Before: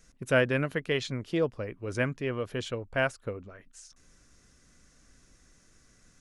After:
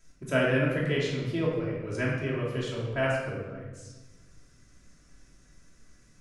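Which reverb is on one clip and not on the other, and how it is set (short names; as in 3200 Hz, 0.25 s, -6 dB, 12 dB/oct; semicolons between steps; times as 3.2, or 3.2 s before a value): shoebox room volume 790 m³, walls mixed, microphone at 2.9 m; gain -6 dB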